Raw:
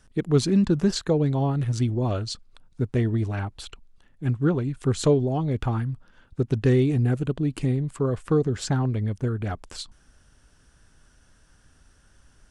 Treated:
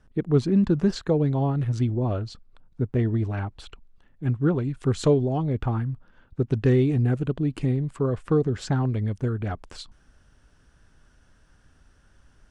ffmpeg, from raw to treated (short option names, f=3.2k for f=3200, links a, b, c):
-af "asetnsamples=n=441:p=0,asendcmd='0.64 lowpass f 2400;1.92 lowpass f 1300;2.99 lowpass f 2400;4.56 lowpass f 4600;5.42 lowpass f 2000;6.46 lowpass f 3400;8.77 lowpass f 6800;9.38 lowpass f 3300',lowpass=f=1.3k:p=1"